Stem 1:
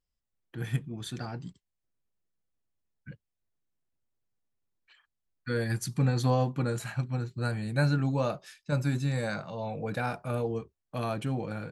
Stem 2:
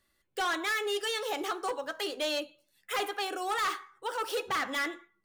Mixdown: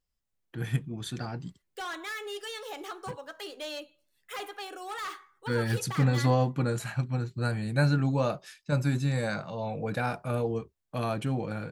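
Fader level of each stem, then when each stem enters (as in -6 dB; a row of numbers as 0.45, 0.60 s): +1.5, -6.5 dB; 0.00, 1.40 s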